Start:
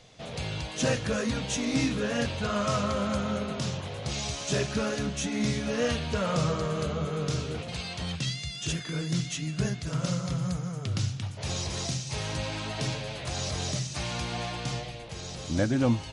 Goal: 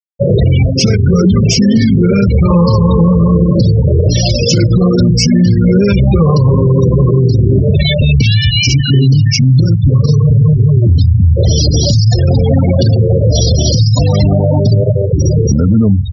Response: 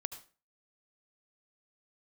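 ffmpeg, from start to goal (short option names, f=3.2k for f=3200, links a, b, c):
-filter_complex "[0:a]acrossover=split=300|3000[a][b][c];[b]acompressor=threshold=-50dB:ratio=2[d];[a][d][c]amix=inputs=3:normalize=0,highpass=f=83:w=0.5412,highpass=f=83:w=1.3066,equalizer=f=3.9k:w=0.79:g=-4.5,asplit=2[e][f];[f]adelay=932.9,volume=-30dB,highshelf=f=4k:g=-21[g];[e][g]amix=inputs=2:normalize=0,asetrate=37084,aresample=44100,atempo=1.18921,equalizer=f=570:w=2:g=2.5,asplit=2[h][i];[1:a]atrim=start_sample=2205,atrim=end_sample=3969[j];[i][j]afir=irnorm=-1:irlink=0,volume=2.5dB[k];[h][k]amix=inputs=2:normalize=0,afftfilt=real='re*gte(hypot(re,im),0.0501)':imag='im*gte(hypot(re,im),0.0501)':win_size=1024:overlap=0.75,acompressor=threshold=-30dB:ratio=5,alimiter=level_in=29dB:limit=-1dB:release=50:level=0:latency=1,volume=-1dB"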